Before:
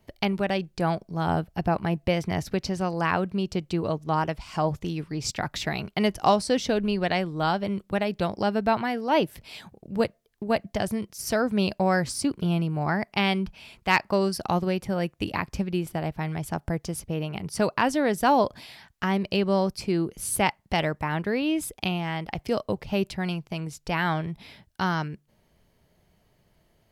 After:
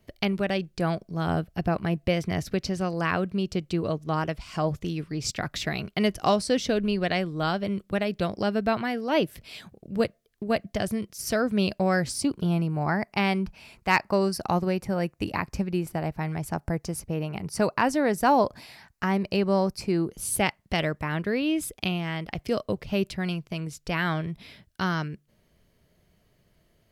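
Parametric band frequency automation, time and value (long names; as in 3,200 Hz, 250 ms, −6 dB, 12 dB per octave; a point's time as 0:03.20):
parametric band −8 dB 0.37 octaves
0:11.98 880 Hz
0:12.58 3,300 Hz
0:20.04 3,300 Hz
0:20.48 850 Hz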